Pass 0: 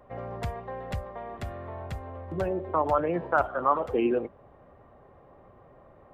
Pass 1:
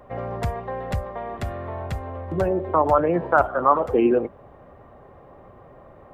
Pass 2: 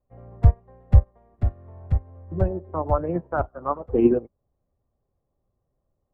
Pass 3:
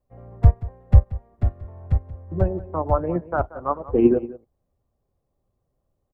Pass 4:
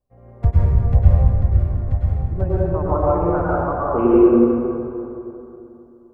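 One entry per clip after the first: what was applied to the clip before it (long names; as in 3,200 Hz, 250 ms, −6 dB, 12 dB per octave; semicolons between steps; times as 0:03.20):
dynamic equaliser 3,200 Hz, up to −6 dB, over −47 dBFS, Q 1; level +7 dB
spectral tilt −4 dB per octave; expander for the loud parts 2.5 to 1, over −32 dBFS
single-tap delay 181 ms −17.5 dB; level +1.5 dB
dense smooth reverb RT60 3 s, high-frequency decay 0.5×, pre-delay 90 ms, DRR −7.5 dB; level −4 dB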